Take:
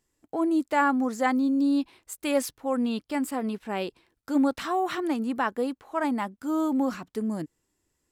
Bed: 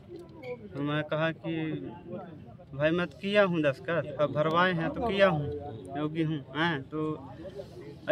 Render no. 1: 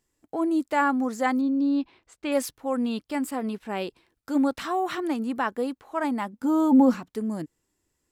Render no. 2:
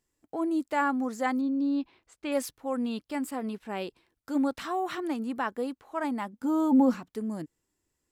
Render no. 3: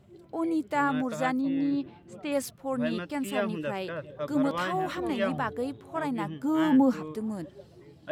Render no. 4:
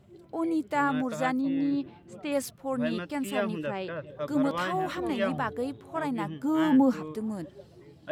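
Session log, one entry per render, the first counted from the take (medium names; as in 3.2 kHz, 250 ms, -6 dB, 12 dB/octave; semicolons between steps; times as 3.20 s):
1.41–2.32 s: distance through air 150 m; 6.32–6.99 s: small resonant body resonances 240/490/860 Hz, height 14 dB -> 11 dB
trim -4 dB
add bed -7 dB
3.66–4.07 s: distance through air 100 m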